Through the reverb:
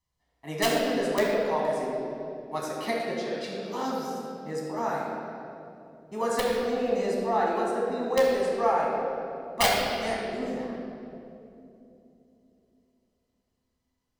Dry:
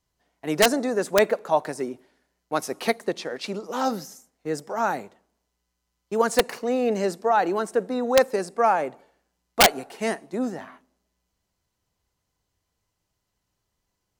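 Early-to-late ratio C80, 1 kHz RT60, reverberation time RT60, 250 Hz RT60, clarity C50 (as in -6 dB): 0.5 dB, 2.3 s, 2.9 s, 4.0 s, -1.0 dB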